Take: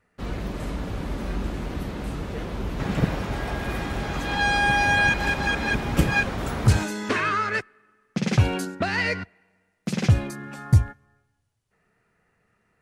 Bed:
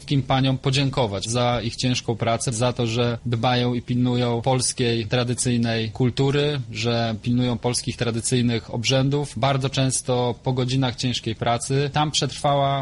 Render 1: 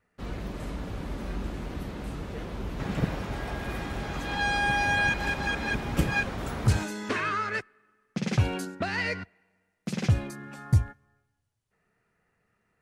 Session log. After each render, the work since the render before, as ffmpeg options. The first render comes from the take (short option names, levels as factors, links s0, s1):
-af "volume=0.562"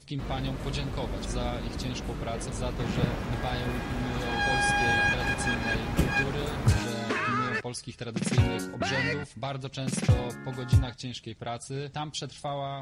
-filter_complex "[1:a]volume=0.211[s0];[0:a][s0]amix=inputs=2:normalize=0"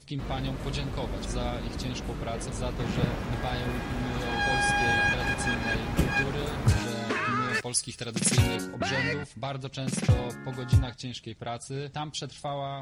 -filter_complex "[0:a]asettb=1/sr,asplit=3[s0][s1][s2];[s0]atrim=end=7.494[s3];[s1]atrim=start=7.49:end=8.56,asetpts=PTS-STARTPTS,afade=t=in:d=0.004:c=qsin,afade=t=out:st=1.066:d=0.004:c=qsin,aemphasis=mode=production:type=75kf[s4];[s2]atrim=start=8.556[s5];[s3][s4]acrossfade=d=0.004:c1=hsin:c2=qsin[s6];[s6][s5]acrossfade=d=0.004:c1=qsin:c2=hsin"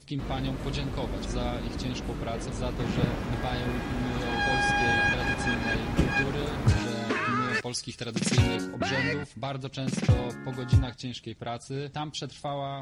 -filter_complex "[0:a]acrossover=split=7500[s0][s1];[s1]acompressor=threshold=0.00141:ratio=4:attack=1:release=60[s2];[s0][s2]amix=inputs=2:normalize=0,equalizer=f=290:t=o:w=0.77:g=3"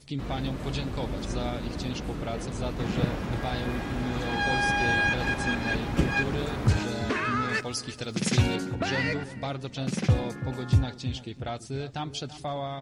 -filter_complex "[0:a]asplit=2[s0][s1];[s1]adelay=335,lowpass=f=1000:p=1,volume=0.224,asplit=2[s2][s3];[s3]adelay=335,lowpass=f=1000:p=1,volume=0.49,asplit=2[s4][s5];[s5]adelay=335,lowpass=f=1000:p=1,volume=0.49,asplit=2[s6][s7];[s7]adelay=335,lowpass=f=1000:p=1,volume=0.49,asplit=2[s8][s9];[s9]adelay=335,lowpass=f=1000:p=1,volume=0.49[s10];[s0][s2][s4][s6][s8][s10]amix=inputs=6:normalize=0"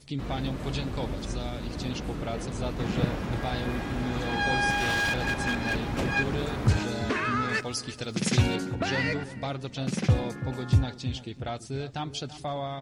-filter_complex "[0:a]asettb=1/sr,asplit=3[s0][s1][s2];[s0]atrim=end=1.134[s3];[s1]atrim=start=1.13:end=1.81,asetpts=PTS-STARTPTS,afade=t=in:d=0.004:c=qsin,afade=t=out:st=0.676:d=0.004:c=qsin,acrossover=split=120|3000[s4][s5][s6];[s5]acompressor=threshold=0.02:ratio=2.5:attack=3.2:release=140:knee=2.83:detection=peak[s7];[s4][s7][s6]amix=inputs=3:normalize=0[s8];[s2]atrim=start=1.806[s9];[s3][s8]acrossfade=d=0.004:c1=hsin:c2=qsin[s10];[s10][s9]acrossfade=d=0.004:c1=qsin:c2=hsin,asettb=1/sr,asplit=3[s11][s12][s13];[s11]atrim=end=4.704[s14];[s12]atrim=start=4.7:end=6.08,asetpts=PTS-STARTPTS,afade=t=in:d=0.004:c=qsin,afade=t=out:st=1.376:d=0.004:c=qsin,aeval=exprs='0.0891*(abs(mod(val(0)/0.0891+3,4)-2)-1)':c=same[s15];[s13]atrim=start=6.076[s16];[s14][s15]acrossfade=d=0.004:c1=hsin:c2=qsin[s17];[s17][s16]acrossfade=d=0.004:c1=qsin:c2=hsin"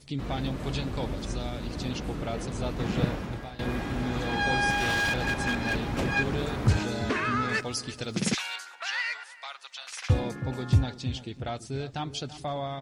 -filter_complex "[0:a]asettb=1/sr,asplit=3[s0][s1][s2];[s0]atrim=end=8.344[s3];[s1]atrim=start=8.34:end=10.1,asetpts=PTS-STARTPTS,afade=t=in:d=0.004:c=qsin,afade=t=out:st=1.756:d=0.004:c=qsin,highpass=f=1000:w=0.5412,highpass=f=1000:w=1.3066[s4];[s2]atrim=start=10.096[s5];[s3][s4]acrossfade=d=0.004:c1=hsin:c2=qsin[s6];[s6][s5]acrossfade=d=0.004:c1=qsin:c2=hsin,asplit=2[s7][s8];[s7]atrim=end=3.59,asetpts=PTS-STARTPTS,afade=t=out:st=3.08:d=0.51:silence=0.133352[s9];[s8]atrim=start=3.59,asetpts=PTS-STARTPTS,afade=t=in:d=0.004:c=hsin:silence=0.133352[s10];[s9][s10]concat=n=2:v=0:a=1"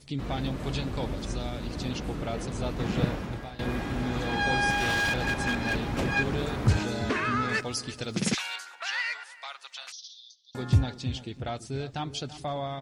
-filter_complex "[0:a]asettb=1/sr,asplit=3[s0][s1][s2];[s0]atrim=end=9.924[s3];[s1]atrim=start=9.92:end=10.55,asetpts=PTS-STARTPTS,afade=t=in:d=0.004:c=qsin,afade=t=out:st=0.626:d=0.004:c=qsin,asuperpass=centerf=4600:order=12:qfactor=1.6[s4];[s2]atrim=start=10.546[s5];[s3][s4]acrossfade=d=0.004:c1=hsin:c2=qsin[s6];[s6][s5]acrossfade=d=0.004:c1=qsin:c2=hsin"